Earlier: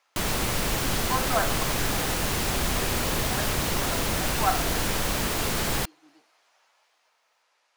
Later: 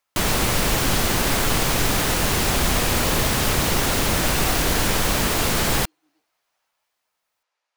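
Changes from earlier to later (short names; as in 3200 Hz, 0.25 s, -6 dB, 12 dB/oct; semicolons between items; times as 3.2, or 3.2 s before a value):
speech -11.5 dB; background +6.0 dB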